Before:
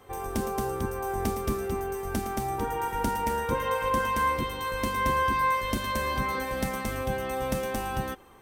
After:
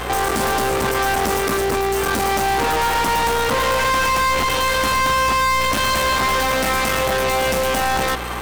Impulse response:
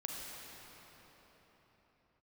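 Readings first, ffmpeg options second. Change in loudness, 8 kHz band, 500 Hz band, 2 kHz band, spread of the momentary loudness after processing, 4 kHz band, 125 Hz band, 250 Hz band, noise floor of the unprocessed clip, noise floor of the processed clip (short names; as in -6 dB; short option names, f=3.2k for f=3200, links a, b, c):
+11.0 dB, +15.0 dB, +10.0 dB, +13.5 dB, 3 LU, +17.0 dB, +6.0 dB, +6.0 dB, -35 dBFS, -20 dBFS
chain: -filter_complex "[0:a]aeval=exprs='max(val(0),0)':c=same,asplit=2[a][b];[b]highpass=f=720:p=1,volume=40dB,asoftclip=type=tanh:threshold=-13.5dB[c];[a][c]amix=inputs=2:normalize=0,lowpass=f=6.8k:p=1,volume=-6dB,aeval=exprs='val(0)+0.0224*(sin(2*PI*60*n/s)+sin(2*PI*2*60*n/s)/2+sin(2*PI*3*60*n/s)/3+sin(2*PI*4*60*n/s)/4+sin(2*PI*5*60*n/s)/5)':c=same,volume=2dB"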